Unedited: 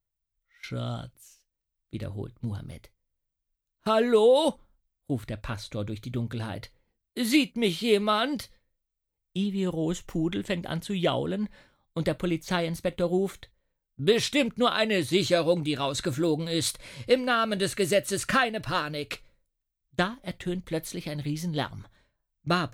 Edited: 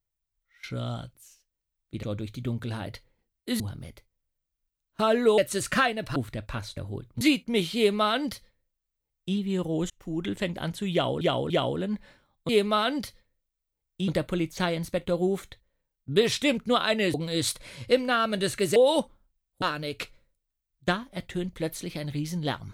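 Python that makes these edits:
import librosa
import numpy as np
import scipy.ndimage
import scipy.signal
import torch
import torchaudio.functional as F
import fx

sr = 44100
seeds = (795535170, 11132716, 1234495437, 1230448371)

y = fx.edit(x, sr, fx.swap(start_s=2.03, length_s=0.44, other_s=5.72, other_length_s=1.57),
    fx.swap(start_s=4.25, length_s=0.86, other_s=17.95, other_length_s=0.78),
    fx.duplicate(start_s=7.85, length_s=1.59, to_s=11.99),
    fx.fade_in_span(start_s=9.98, length_s=0.39),
    fx.repeat(start_s=11.0, length_s=0.29, count=3),
    fx.cut(start_s=15.05, length_s=1.28), tone=tone)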